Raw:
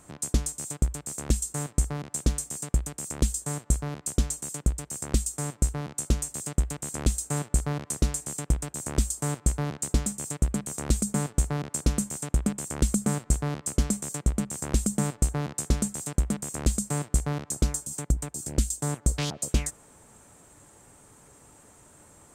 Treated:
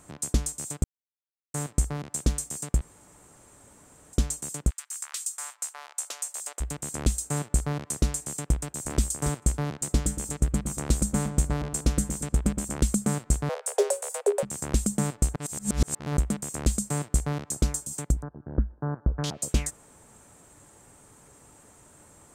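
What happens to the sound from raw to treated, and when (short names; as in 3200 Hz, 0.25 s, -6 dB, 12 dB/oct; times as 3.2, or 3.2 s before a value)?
0.84–1.54 mute
2.81–4.13 room tone
4.69–6.6 HPF 1300 Hz -> 560 Hz 24 dB/oct
8.57–9.01 echo throw 0.28 s, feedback 10%, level -8.5 dB
9.7–12.78 darkening echo 0.116 s, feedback 44%, low-pass 1400 Hz, level -7 dB
13.49–14.43 frequency shift +350 Hz
15.36–16.17 reverse
18.22–19.24 Chebyshev low-pass 1600 Hz, order 5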